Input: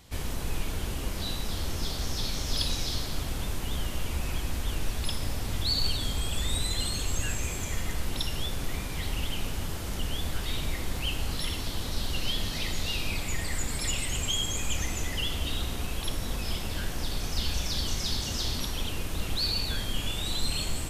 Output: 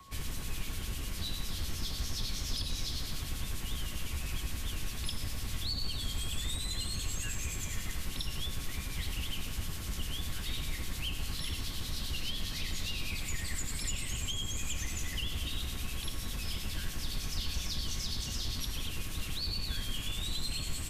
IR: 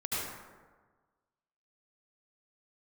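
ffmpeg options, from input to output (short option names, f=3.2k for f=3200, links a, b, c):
-filter_complex "[0:a]aeval=exprs='val(0)+0.00316*sin(2*PI*1100*n/s)':c=same,acrossover=split=120|300|1500[a][b][c][d];[a]acompressor=threshold=-30dB:ratio=4[e];[b]acompressor=threshold=-45dB:ratio=4[f];[c]acompressor=threshold=-55dB:ratio=4[g];[d]acompressor=threshold=-34dB:ratio=4[h];[e][f][g][h]amix=inputs=4:normalize=0,acrossover=split=2300[i][j];[i]aeval=exprs='val(0)*(1-0.5/2+0.5/2*cos(2*PI*9.9*n/s))':c=same[k];[j]aeval=exprs='val(0)*(1-0.5/2-0.5/2*cos(2*PI*9.9*n/s))':c=same[l];[k][l]amix=inputs=2:normalize=0"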